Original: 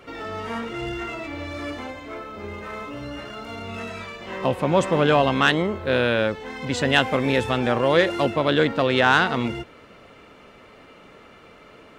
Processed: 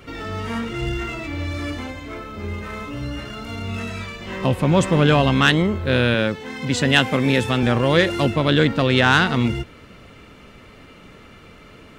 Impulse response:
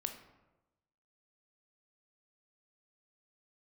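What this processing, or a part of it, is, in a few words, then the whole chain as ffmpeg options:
smiley-face EQ: -filter_complex "[0:a]asettb=1/sr,asplit=3[link_01][link_02][link_03];[link_01]atrim=end=6.144[link_04];[link_02]atrim=start=6.14:end=7.63,asetpts=PTS-STARTPTS,afade=type=in:duration=0.004:curve=qsin,afade=type=out:start_time=1.486:duration=0.004:curve=qsin,highpass=130[link_05];[link_03]atrim=start=7.626[link_06];[link_04][link_05]acrossfade=duration=0.004:curve1=hsin:curve2=qsin[link_07];[link_07][link_06]acrossfade=duration=0.004:curve1=qsin:curve2=hsin,lowshelf=frequency=190:gain=8.5,equalizer=frequency=670:width_type=o:width=2.1:gain=-6,highshelf=frequency=7600:gain=4,volume=4dB"

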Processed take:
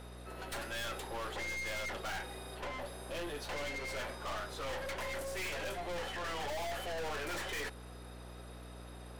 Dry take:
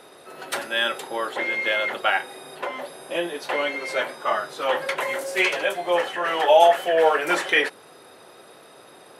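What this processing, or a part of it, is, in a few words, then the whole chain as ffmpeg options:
valve amplifier with mains hum: -af "aeval=exprs='(tanh(44.7*val(0)+0.45)-tanh(0.45))/44.7':channel_layout=same,aeval=exprs='val(0)+0.00631*(sin(2*PI*60*n/s)+sin(2*PI*2*60*n/s)/2+sin(2*PI*3*60*n/s)/3+sin(2*PI*4*60*n/s)/4+sin(2*PI*5*60*n/s)/5)':channel_layout=same,volume=-5dB"

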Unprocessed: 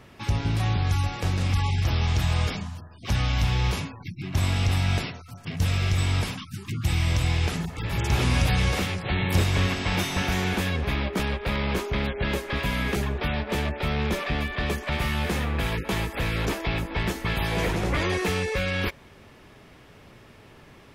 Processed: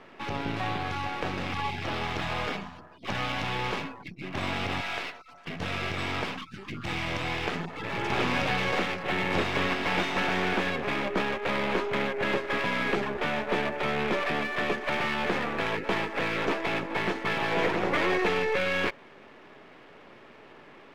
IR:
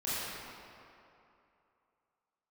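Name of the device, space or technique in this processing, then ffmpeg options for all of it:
crystal radio: -filter_complex "[0:a]asettb=1/sr,asplit=3[link_01][link_02][link_03];[link_01]atrim=end=4.814[link_04];[link_02]atrim=start=4.81:end=5.47,asetpts=PTS-STARTPTS,afade=type=in:duration=0.004:curve=qsin,afade=type=out:start_time=0.656:duration=0.004:curve=qsin,highpass=frequency=850:poles=1[link_05];[link_03]atrim=start=5.466[link_06];[link_04][link_05]acrossfade=duration=0.004:curve1=hsin:curve2=qsin[link_07];[link_07][link_06]acrossfade=duration=0.004:curve1=qsin:curve2=hsin,highpass=280,lowpass=2700,aeval=exprs='if(lt(val(0),0),0.447*val(0),val(0))':channel_layout=same,volume=5dB"

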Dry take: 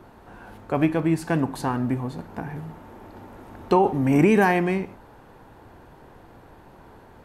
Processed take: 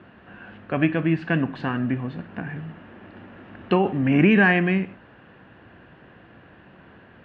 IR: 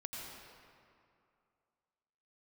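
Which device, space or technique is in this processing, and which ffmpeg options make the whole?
guitar cabinet: -af "highpass=82,equalizer=frequency=190:width_type=q:width=4:gain=5,equalizer=frequency=430:width_type=q:width=4:gain=-4,equalizer=frequency=880:width_type=q:width=4:gain=-9,equalizer=frequency=1700:width_type=q:width=4:gain=8,equalizer=frequency=2800:width_type=q:width=4:gain=9,lowpass=frequency=3500:width=0.5412,lowpass=frequency=3500:width=1.3066"

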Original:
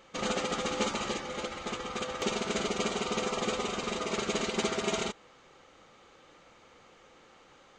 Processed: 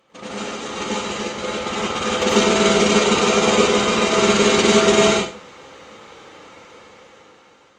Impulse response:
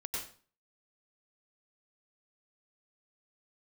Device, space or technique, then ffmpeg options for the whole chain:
far-field microphone of a smart speaker: -filter_complex "[1:a]atrim=start_sample=2205[link_01];[0:a][link_01]afir=irnorm=-1:irlink=0,highpass=91,dynaudnorm=framelen=610:gausssize=5:maxgain=13.5dB,volume=2dB" -ar 48000 -c:a libopus -b:a 32k

